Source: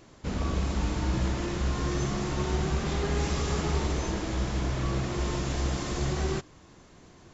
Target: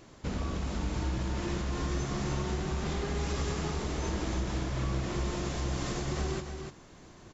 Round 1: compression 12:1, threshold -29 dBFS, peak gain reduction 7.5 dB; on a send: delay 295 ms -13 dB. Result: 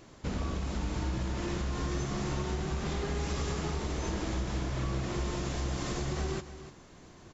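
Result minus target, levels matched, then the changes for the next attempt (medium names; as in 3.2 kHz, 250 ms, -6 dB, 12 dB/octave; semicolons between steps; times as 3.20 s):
echo-to-direct -6.5 dB
change: delay 295 ms -6.5 dB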